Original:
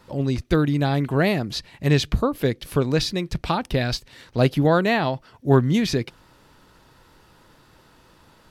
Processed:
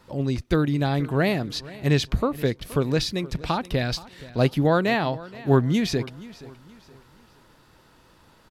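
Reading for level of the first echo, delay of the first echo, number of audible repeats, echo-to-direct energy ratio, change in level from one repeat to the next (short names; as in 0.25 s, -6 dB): -19.0 dB, 0.474 s, 2, -18.5 dB, -8.5 dB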